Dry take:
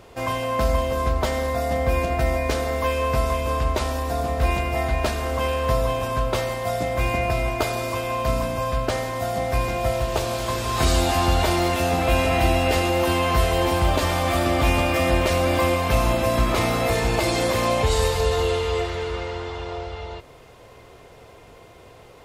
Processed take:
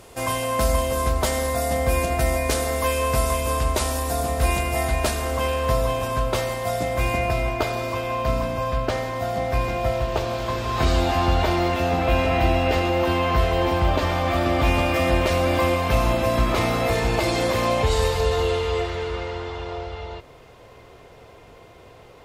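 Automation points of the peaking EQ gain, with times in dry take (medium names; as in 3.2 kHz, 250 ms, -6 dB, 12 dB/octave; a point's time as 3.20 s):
peaking EQ 10 kHz 1.3 oct
4.90 s +12.5 dB
5.52 s +3 dB
7.16 s +3 dB
7.61 s -8 dB
9.76 s -8 dB
10.23 s -14 dB
14.31 s -14 dB
14.86 s -4.5 dB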